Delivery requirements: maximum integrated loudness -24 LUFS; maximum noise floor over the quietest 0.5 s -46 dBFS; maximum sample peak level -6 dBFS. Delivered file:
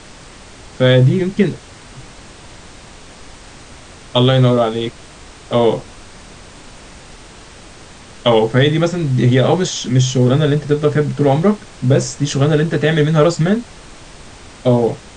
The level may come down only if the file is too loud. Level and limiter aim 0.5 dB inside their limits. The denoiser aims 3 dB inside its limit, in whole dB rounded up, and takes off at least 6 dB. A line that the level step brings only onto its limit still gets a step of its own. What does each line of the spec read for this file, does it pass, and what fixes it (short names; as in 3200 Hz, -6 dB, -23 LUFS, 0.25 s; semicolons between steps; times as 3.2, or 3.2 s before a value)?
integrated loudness -15.0 LUFS: fail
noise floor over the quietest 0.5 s -38 dBFS: fail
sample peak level -1.5 dBFS: fail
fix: gain -9.5 dB